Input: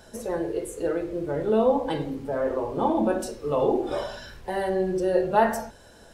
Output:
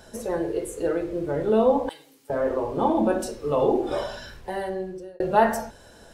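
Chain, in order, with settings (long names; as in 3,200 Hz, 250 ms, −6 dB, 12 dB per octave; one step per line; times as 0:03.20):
0:01.89–0:02.30: first difference
0:04.26–0:05.20: fade out
level +1.5 dB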